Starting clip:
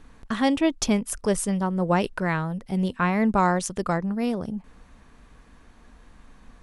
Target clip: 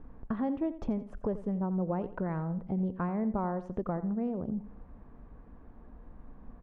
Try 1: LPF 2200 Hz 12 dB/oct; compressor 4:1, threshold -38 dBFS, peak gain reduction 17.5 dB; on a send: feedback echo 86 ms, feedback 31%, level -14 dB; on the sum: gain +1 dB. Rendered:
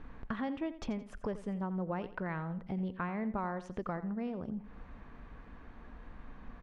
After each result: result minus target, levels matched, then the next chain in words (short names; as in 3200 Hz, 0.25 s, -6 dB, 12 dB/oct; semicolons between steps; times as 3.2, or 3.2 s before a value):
2000 Hz band +10.0 dB; compressor: peak gain reduction +5.5 dB
LPF 810 Hz 12 dB/oct; compressor 4:1, threshold -38 dBFS, peak gain reduction 17 dB; on a send: feedback echo 86 ms, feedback 31%, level -14 dB; on the sum: gain +1 dB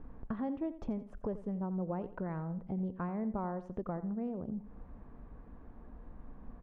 compressor: peak gain reduction +5 dB
LPF 810 Hz 12 dB/oct; compressor 4:1, threshold -31.5 dBFS, peak gain reduction 12 dB; on a send: feedback echo 86 ms, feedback 31%, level -14 dB; on the sum: gain +1 dB